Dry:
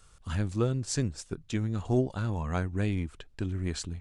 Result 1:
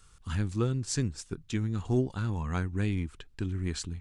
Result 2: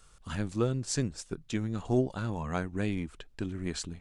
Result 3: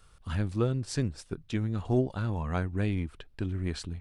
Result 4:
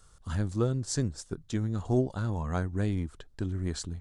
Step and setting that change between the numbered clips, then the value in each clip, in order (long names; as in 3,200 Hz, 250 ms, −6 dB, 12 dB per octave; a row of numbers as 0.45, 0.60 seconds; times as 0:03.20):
parametric band, centre frequency: 610, 88, 7,000, 2,500 Hertz